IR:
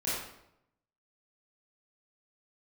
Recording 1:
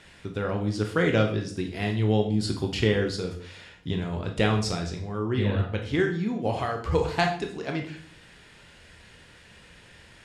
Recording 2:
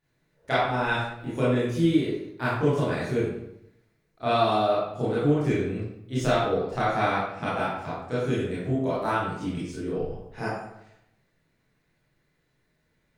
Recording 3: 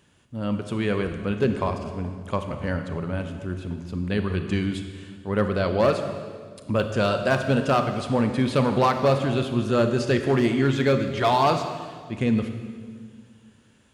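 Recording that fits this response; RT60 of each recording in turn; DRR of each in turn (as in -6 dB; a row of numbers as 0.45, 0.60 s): 2; 0.55, 0.80, 1.8 s; 3.0, -10.5, 6.5 dB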